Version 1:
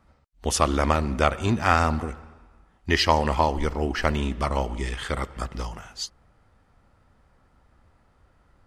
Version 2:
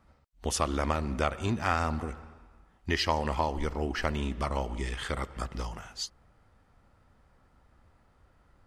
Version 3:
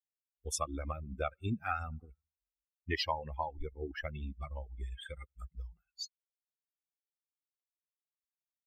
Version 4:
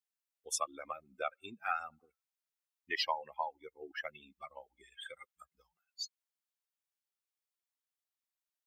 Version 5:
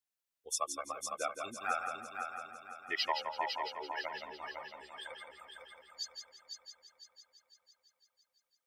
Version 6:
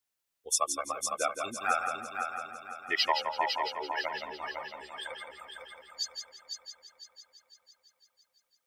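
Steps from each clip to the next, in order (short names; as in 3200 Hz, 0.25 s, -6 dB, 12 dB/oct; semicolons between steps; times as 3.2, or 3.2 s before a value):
compressor 1.5:1, threshold -30 dBFS, peak gain reduction 6 dB; gain -2.5 dB
per-bin expansion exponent 3; gain -1.5 dB
HPF 610 Hz 12 dB/oct; gain +1 dB
multi-head echo 0.168 s, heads first and third, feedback 58%, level -6.5 dB
dynamic EQ 9500 Hz, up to +3 dB, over -53 dBFS, Q 0.94; gain +6 dB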